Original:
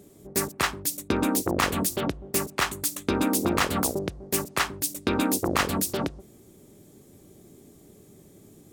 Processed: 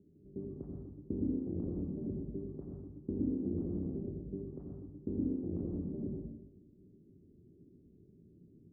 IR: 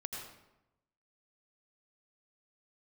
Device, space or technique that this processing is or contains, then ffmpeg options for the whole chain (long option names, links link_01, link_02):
next room: -filter_complex "[0:a]lowpass=frequency=360:width=0.5412,lowpass=frequency=360:width=1.3066[link_01];[1:a]atrim=start_sample=2205[link_02];[link_01][link_02]afir=irnorm=-1:irlink=0,volume=-7dB"